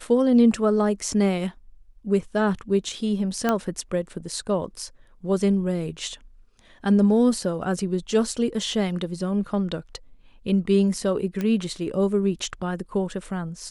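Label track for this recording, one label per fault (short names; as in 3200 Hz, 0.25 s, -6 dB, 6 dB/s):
3.490000	3.490000	pop -9 dBFS
11.410000	11.410000	pop -15 dBFS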